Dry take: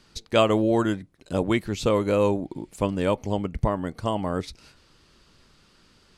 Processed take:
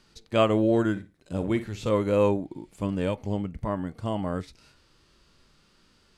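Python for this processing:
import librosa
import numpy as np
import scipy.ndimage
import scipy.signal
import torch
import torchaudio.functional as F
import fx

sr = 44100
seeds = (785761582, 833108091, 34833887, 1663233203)

y = fx.dynamic_eq(x, sr, hz=1700.0, q=1.1, threshold_db=-38.0, ratio=4.0, max_db=4)
y = fx.hpss(y, sr, part='percussive', gain_db=-12)
y = fx.room_flutter(y, sr, wall_m=9.5, rt60_s=0.26, at=(0.95, 1.89), fade=0.02)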